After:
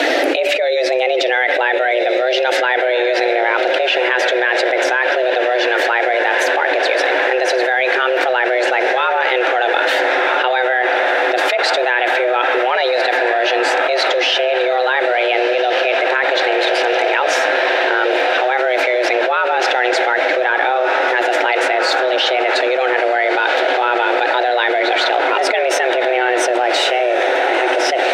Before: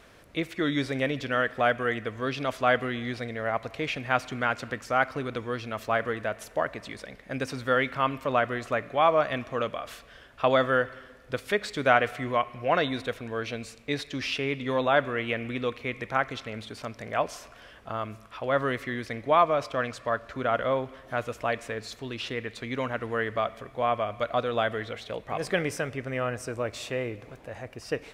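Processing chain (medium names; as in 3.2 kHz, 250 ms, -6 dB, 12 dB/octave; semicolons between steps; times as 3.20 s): coarse spectral quantiser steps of 15 dB; FFT filter 190 Hz 0 dB, 360 Hz +8 dB, 710 Hz -10 dB, 1.4 kHz +2 dB, 3.6 kHz +1 dB, 11 kHz -13 dB; frequency shift +250 Hz; echo that smears into a reverb 1411 ms, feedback 75%, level -13 dB; level flattener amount 100%; trim +3 dB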